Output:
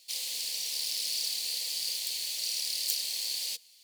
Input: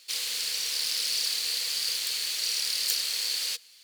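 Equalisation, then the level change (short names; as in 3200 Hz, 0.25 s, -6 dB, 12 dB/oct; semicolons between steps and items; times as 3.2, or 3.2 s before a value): high shelf 11000 Hz +3.5 dB; fixed phaser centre 370 Hz, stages 6; -3.5 dB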